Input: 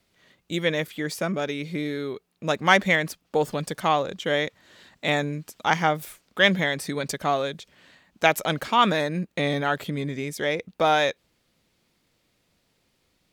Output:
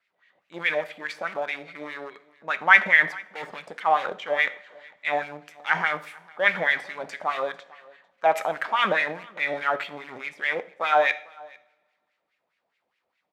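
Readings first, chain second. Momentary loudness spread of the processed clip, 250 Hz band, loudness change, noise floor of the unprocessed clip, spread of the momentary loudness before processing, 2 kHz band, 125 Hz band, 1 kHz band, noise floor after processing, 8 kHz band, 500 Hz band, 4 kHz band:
18 LU, −13.5 dB, +1.0 dB, −71 dBFS, 11 LU, +3.5 dB, −17.0 dB, −0.5 dB, −78 dBFS, below −10 dB, −3.5 dB, −6.5 dB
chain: transient designer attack −4 dB, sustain +8 dB
in parallel at −8.5 dB: bit reduction 4 bits
on the sum: LFO wah 4.8 Hz 650–2,300 Hz, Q 3.2
on a send: single-tap delay 448 ms −23 dB
on the sum: coupled-rooms reverb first 0.49 s, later 1.7 s, DRR 11.5 dB
dynamic equaliser 2,100 Hz, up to +4 dB, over −35 dBFS, Q 0.87
level +3 dB

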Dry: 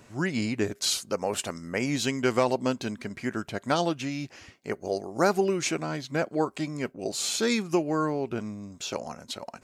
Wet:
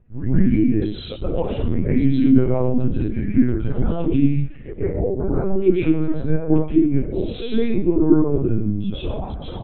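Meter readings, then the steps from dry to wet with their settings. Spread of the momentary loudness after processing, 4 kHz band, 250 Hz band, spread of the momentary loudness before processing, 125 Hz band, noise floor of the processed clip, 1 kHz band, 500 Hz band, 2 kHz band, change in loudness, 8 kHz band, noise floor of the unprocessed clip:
10 LU, can't be measured, +12.5 dB, 11 LU, +14.5 dB, −33 dBFS, −4.5 dB, +5.5 dB, −6.0 dB, +8.5 dB, below −40 dB, −57 dBFS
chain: low-shelf EQ 300 Hz +11.5 dB
brickwall limiter −15.5 dBFS, peak gain reduction 9.5 dB
downward compressor 6 to 1, threshold −27 dBFS, peak gain reduction 7.5 dB
slap from a distant wall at 160 metres, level −21 dB
dense smooth reverb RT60 0.82 s, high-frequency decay 0.9×, pre-delay 110 ms, DRR −8.5 dB
linear-prediction vocoder at 8 kHz pitch kept
every bin expanded away from the loudest bin 1.5 to 1
level +6 dB

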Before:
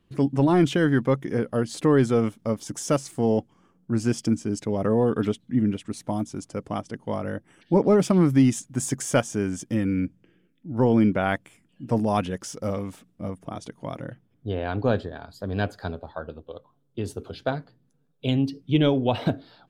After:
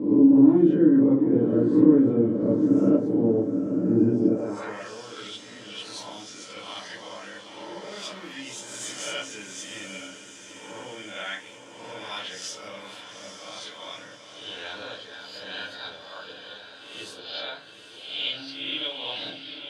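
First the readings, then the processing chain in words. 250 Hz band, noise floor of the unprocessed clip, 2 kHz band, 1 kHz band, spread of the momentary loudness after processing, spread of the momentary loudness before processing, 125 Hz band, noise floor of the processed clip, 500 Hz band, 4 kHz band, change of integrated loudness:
+2.0 dB, −66 dBFS, −2.5 dB, −9.0 dB, 22 LU, 17 LU, −8.5 dB, −46 dBFS, −3.5 dB, +6.0 dB, +2.0 dB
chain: peak hold with a rise ahead of every peak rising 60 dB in 0.73 s
downward compressor 4 to 1, threshold −24 dBFS, peak gain reduction 10 dB
on a send: feedback delay with all-pass diffusion 852 ms, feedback 54%, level −8 dB
on the sum: rectangular room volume 120 cubic metres, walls furnished, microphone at 2.2 metres
band-pass filter sweep 270 Hz → 3,400 Hz, 0:04.20–0:04.88
level +5 dB

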